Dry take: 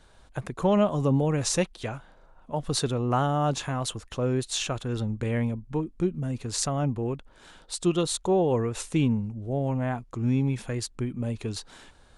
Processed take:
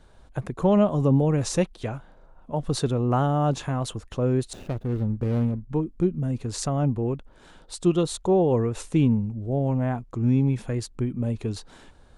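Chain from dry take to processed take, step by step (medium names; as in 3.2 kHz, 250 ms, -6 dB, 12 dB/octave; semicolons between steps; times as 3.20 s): 4.53–5.70 s: median filter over 41 samples; tilt shelf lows +4 dB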